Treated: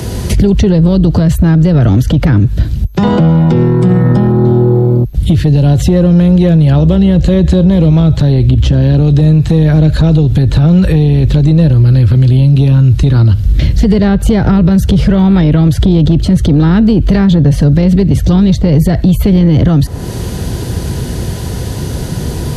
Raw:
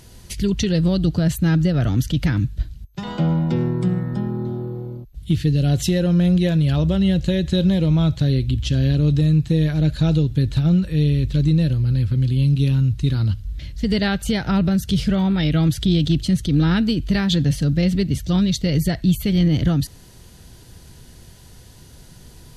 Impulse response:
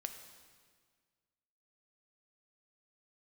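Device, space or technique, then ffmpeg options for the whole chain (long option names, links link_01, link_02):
mastering chain: -filter_complex "[0:a]highpass=51,equalizer=frequency=430:width_type=o:width=0.77:gain=2.5,acrossover=split=95|520|1500[link_01][link_02][link_03][link_04];[link_01]acompressor=threshold=-35dB:ratio=4[link_05];[link_02]acompressor=threshold=-30dB:ratio=4[link_06];[link_03]acompressor=threshold=-39dB:ratio=4[link_07];[link_04]acompressor=threshold=-45dB:ratio=4[link_08];[link_05][link_06][link_07][link_08]amix=inputs=4:normalize=0,acompressor=threshold=-32dB:ratio=2,asoftclip=type=tanh:threshold=-25.5dB,tiltshelf=frequency=1200:gain=4.5,alimiter=level_in=25.5dB:limit=-1dB:release=50:level=0:latency=1,volume=-1dB"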